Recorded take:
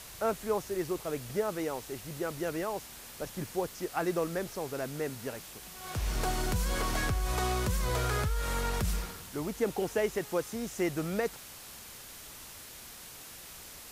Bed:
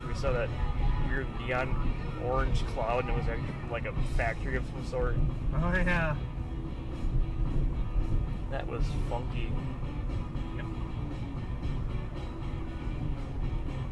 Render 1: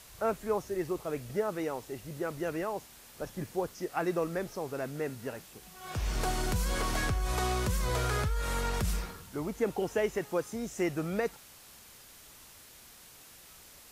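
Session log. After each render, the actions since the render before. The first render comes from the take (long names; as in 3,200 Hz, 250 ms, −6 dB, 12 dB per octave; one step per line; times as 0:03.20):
noise reduction from a noise print 6 dB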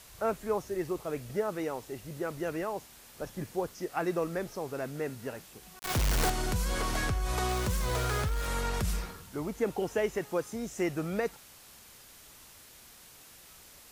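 0:05.79–0:06.30: log-companded quantiser 2 bits
0:07.49–0:08.47: centre clipping without the shift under −37 dBFS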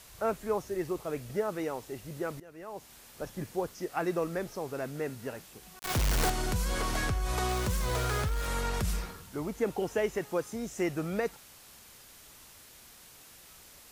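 0:02.40–0:02.91: fade in quadratic, from −19 dB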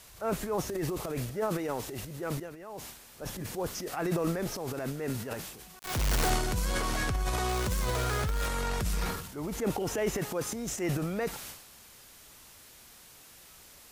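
transient designer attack −5 dB, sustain +11 dB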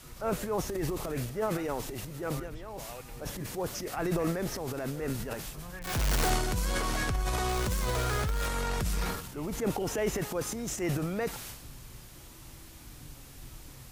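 mix in bed −15.5 dB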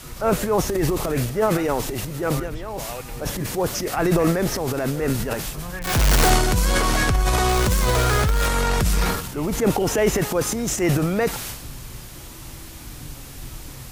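level +11 dB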